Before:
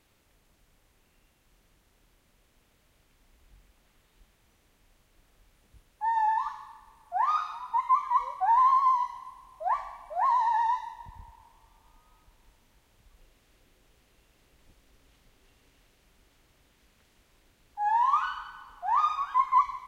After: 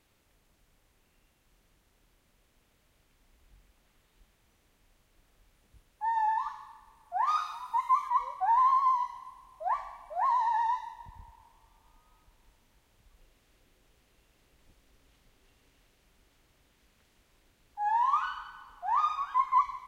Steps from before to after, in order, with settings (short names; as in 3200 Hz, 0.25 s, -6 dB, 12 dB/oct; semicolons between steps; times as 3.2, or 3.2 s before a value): 7.26–8.08 high shelf 3700 Hz -> 4600 Hz +10 dB; gain -2.5 dB